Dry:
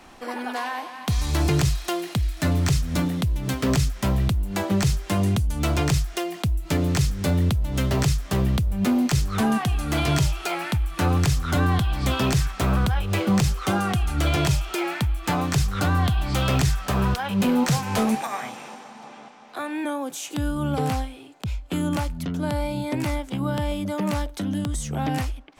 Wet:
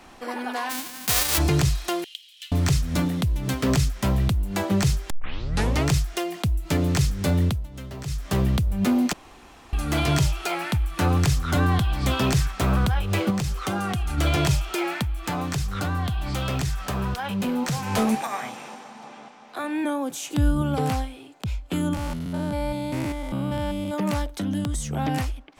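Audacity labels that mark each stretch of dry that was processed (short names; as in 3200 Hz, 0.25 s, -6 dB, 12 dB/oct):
0.690000	1.370000	spectral whitening exponent 0.1
2.040000	2.520000	ladder high-pass 2900 Hz, resonance 80%
5.100000	5.100000	tape start 0.78 s
7.440000	8.290000	dip -14 dB, fades 0.25 s
9.130000	9.730000	room tone
13.300000	14.180000	compressor, threshold -22 dBFS
15.020000	17.850000	compressor 2:1, threshold -26 dBFS
19.640000	20.620000	low shelf 200 Hz +8.5 dB
21.940000	23.940000	stepped spectrum every 0.2 s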